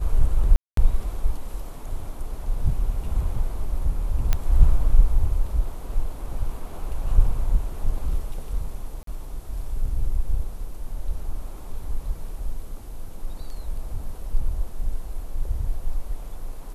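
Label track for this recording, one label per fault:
0.560000	0.770000	gap 0.213 s
4.330000	4.330000	pop -8 dBFS
9.030000	9.070000	gap 43 ms

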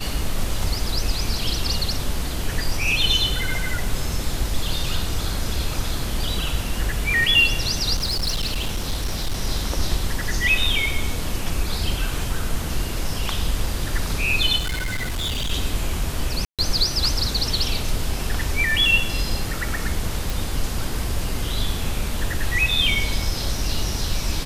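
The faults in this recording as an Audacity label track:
7.950000	9.410000	clipped -19 dBFS
14.580000	15.520000	clipped -21.5 dBFS
16.450000	16.590000	gap 0.137 s
20.300000	20.300000	pop

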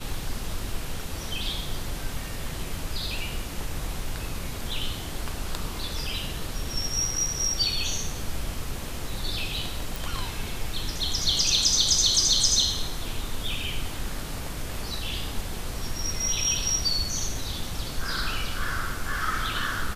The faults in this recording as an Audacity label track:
9.960000	9.960000	pop

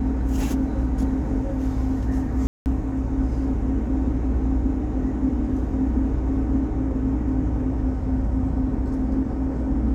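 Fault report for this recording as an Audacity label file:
2.470000	2.660000	gap 0.189 s

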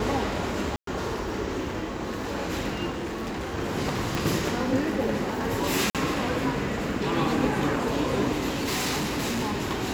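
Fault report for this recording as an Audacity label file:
0.760000	0.870000	gap 0.113 s
2.900000	3.550000	clipped -28.5 dBFS
4.150000	4.150000	pop
5.900000	5.950000	gap 47 ms
8.490000	9.620000	clipped -24 dBFS

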